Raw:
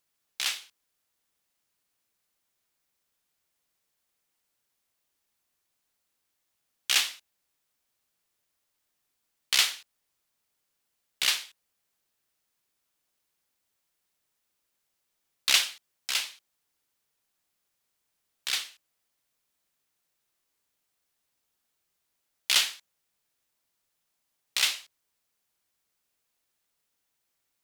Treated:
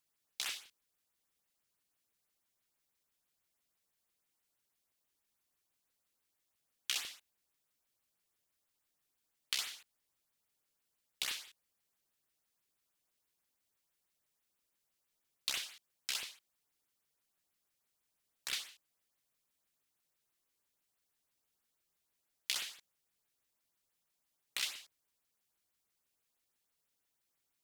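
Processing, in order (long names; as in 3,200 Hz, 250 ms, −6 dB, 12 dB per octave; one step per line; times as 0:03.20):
downward compressor 6 to 1, threshold −29 dBFS, peak gain reduction 12.5 dB
auto-filter notch saw up 6.1 Hz 450–7,100 Hz
level −4 dB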